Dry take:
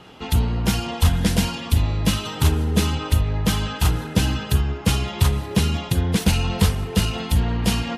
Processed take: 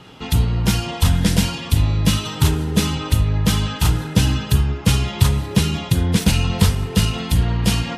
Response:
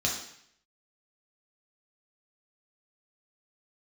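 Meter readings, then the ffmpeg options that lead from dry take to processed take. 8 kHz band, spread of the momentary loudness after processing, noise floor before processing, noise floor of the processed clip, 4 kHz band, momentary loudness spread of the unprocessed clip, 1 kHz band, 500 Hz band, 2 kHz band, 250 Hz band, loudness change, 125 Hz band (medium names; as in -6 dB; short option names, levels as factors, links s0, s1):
+3.5 dB, 3 LU, -33 dBFS, -31 dBFS, +3.0 dB, 3 LU, +0.5 dB, +0.5 dB, +2.0 dB, +2.5 dB, +3.0 dB, +3.5 dB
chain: -filter_complex "[0:a]asplit=2[s0][s1];[1:a]atrim=start_sample=2205,afade=t=out:st=0.17:d=0.01,atrim=end_sample=7938,asetrate=57330,aresample=44100[s2];[s1][s2]afir=irnorm=-1:irlink=0,volume=0.168[s3];[s0][s3]amix=inputs=2:normalize=0,volume=1.19"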